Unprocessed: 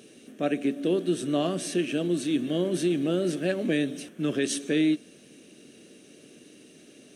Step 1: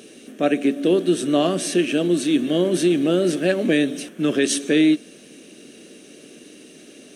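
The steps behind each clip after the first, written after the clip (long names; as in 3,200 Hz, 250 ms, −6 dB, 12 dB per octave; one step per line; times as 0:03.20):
parametric band 110 Hz −9.5 dB 0.9 octaves
level +8 dB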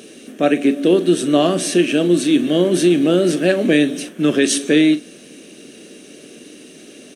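double-tracking delay 40 ms −14 dB
level +4 dB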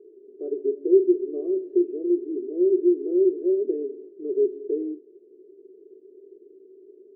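flat-topped band-pass 390 Hz, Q 6.1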